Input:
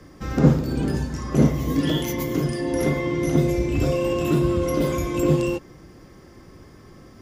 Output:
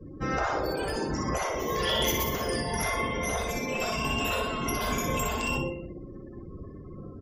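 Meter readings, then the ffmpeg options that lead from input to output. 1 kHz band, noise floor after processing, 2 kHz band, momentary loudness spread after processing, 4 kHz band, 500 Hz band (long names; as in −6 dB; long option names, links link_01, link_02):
+3.0 dB, −44 dBFS, +3.0 dB, 17 LU, +4.0 dB, −7.0 dB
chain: -af "aecho=1:1:61|122|183|244|305|366|427|488:0.562|0.321|0.183|0.104|0.0594|0.0338|0.0193|0.011,afftfilt=real='re*lt(hypot(re,im),0.251)':imag='im*lt(hypot(re,im),0.251)':win_size=1024:overlap=0.75,afftdn=noise_reduction=34:noise_floor=-44,volume=3dB"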